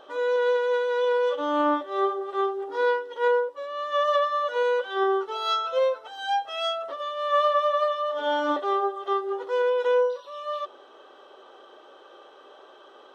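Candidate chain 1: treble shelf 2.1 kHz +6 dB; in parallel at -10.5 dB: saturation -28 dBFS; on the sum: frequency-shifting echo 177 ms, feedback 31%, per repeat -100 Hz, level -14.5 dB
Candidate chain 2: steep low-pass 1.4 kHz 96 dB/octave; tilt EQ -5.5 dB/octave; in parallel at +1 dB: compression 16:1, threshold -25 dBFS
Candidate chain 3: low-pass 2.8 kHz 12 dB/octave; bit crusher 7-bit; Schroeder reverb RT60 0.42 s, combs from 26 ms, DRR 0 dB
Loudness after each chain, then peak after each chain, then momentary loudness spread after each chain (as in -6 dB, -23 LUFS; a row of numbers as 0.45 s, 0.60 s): -23.0 LUFS, -18.5 LUFS, -22.5 LUFS; -10.0 dBFS, -7.0 dBFS, -8.0 dBFS; 6 LU, 8 LU, 10 LU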